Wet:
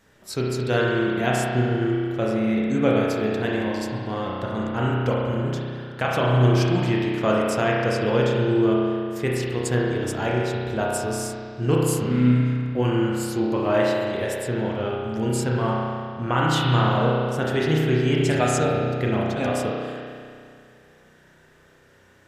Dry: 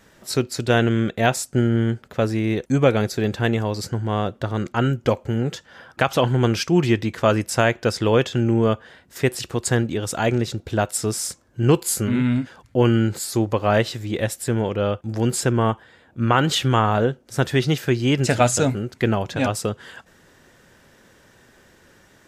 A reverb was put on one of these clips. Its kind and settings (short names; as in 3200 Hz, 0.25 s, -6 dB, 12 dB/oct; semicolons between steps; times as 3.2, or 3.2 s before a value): spring tank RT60 2.2 s, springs 32 ms, chirp 40 ms, DRR -4 dB; gain -7 dB